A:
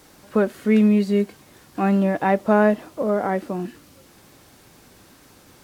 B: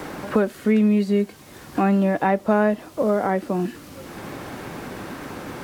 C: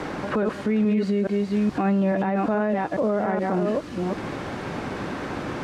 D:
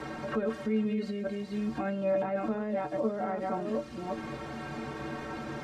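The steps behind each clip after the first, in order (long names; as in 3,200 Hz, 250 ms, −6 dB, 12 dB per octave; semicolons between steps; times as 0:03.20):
multiband upward and downward compressor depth 70%
delay that plays each chunk backwards 424 ms, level −6 dB; brickwall limiter −18 dBFS, peak gain reduction 11.5 dB; high-frequency loss of the air 82 metres; level +3 dB
stiff-string resonator 67 Hz, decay 0.29 s, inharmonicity 0.03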